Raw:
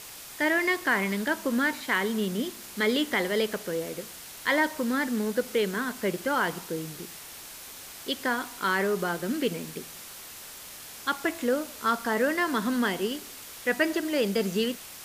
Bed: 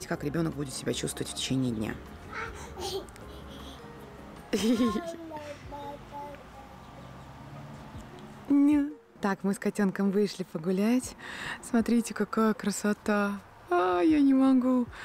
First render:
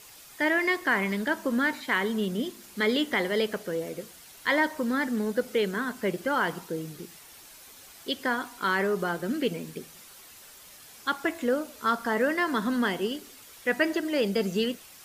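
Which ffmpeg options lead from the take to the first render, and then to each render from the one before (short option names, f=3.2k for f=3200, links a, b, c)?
-af "afftdn=nr=8:nf=-44"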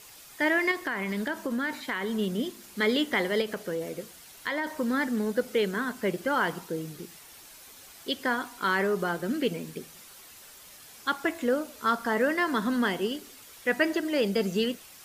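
-filter_complex "[0:a]asettb=1/sr,asplit=3[a][b][c];[a]atrim=end=0.714[d];[b]atrim=start=0.71:end=2.19,asetpts=PTS-STARTPTS,afade=t=in:d=0.004:c=qsin,afade=t=out:st=1.476:d=0.004:c=qsin,acompressor=threshold=-26dB:ratio=6:attack=3.2:release=140:knee=1:detection=peak[e];[c]atrim=start=2.186[f];[d][e]acrossfade=d=0.004:c1=hsin:c2=qsin[g];[g][f]acrossfade=d=0.004:c1=qsin:c2=hsin,asettb=1/sr,asplit=3[h][i][j];[h]atrim=end=3.414[k];[i]atrim=start=3.41:end=4.67,asetpts=PTS-STARTPTS,afade=t=in:d=0.004:c=qsin,afade=t=out:st=1.256:d=0.004:c=qsin,acompressor=threshold=-26dB:ratio=6:attack=3.2:release=140:knee=1:detection=peak[l];[j]atrim=start=4.666[m];[k][l]acrossfade=d=0.004:c1=hsin:c2=qsin[n];[n][m]acrossfade=d=0.004:c1=qsin:c2=hsin"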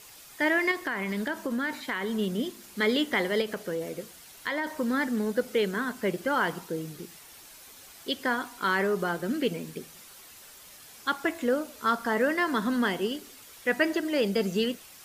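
-af anull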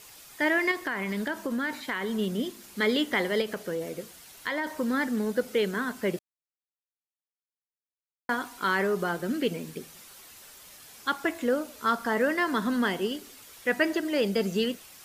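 -filter_complex "[0:a]asplit=3[a][b][c];[a]atrim=end=6.19,asetpts=PTS-STARTPTS,afade=t=out:st=6.186:d=0.004:c=hsin[d];[b]atrim=start=6.19:end=8.29,asetpts=PTS-STARTPTS,volume=0[e];[c]atrim=start=8.29,asetpts=PTS-STARTPTS,afade=t=in:d=0.004:c=hsin[f];[d][e][f]concat=n=3:v=0:a=1"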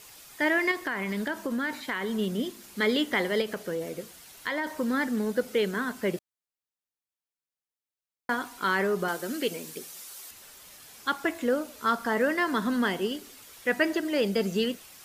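-filter_complex "[0:a]asettb=1/sr,asplit=3[a][b][c];[a]atrim=end=9.084[d];[b]atrim=start=9.08:end=10.31,asetpts=PTS-STARTPTS,afade=t=in:d=0.004:c=qsin,afade=t=out:st=1.226:d=0.004:c=qsin,bass=f=250:g=-10,treble=f=4k:g=7[e];[c]atrim=start=10.306[f];[d][e]acrossfade=d=0.004:c1=hsin:c2=qsin[g];[g][f]acrossfade=d=0.004:c1=qsin:c2=hsin"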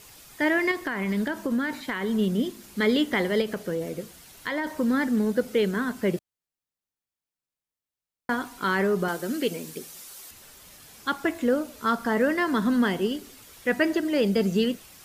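-af "lowshelf=f=290:g=8.5"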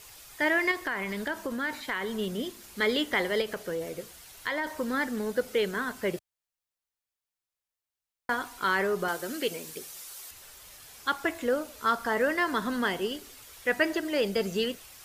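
-af "equalizer=f=210:w=0.9:g=-10.5"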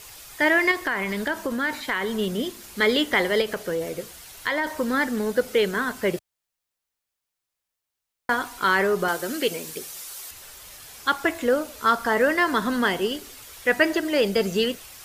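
-af "volume=6dB"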